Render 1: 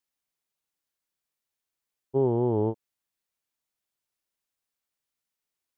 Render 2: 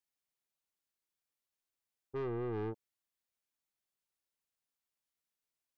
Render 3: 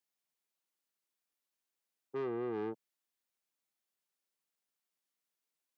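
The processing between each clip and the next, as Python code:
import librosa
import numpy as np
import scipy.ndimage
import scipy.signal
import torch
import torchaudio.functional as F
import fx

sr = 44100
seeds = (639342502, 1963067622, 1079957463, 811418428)

y1 = 10.0 ** (-29.0 / 20.0) * np.tanh(x / 10.0 ** (-29.0 / 20.0))
y1 = F.gain(torch.from_numpy(y1), -5.5).numpy()
y2 = scipy.signal.sosfilt(scipy.signal.butter(4, 160.0, 'highpass', fs=sr, output='sos'), y1)
y2 = F.gain(torch.from_numpy(y2), 1.0).numpy()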